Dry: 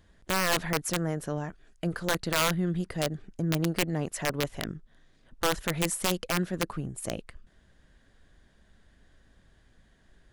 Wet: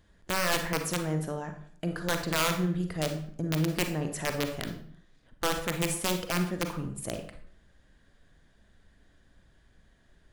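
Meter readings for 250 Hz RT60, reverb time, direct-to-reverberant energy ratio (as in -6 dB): 0.65 s, 0.55 s, 5.5 dB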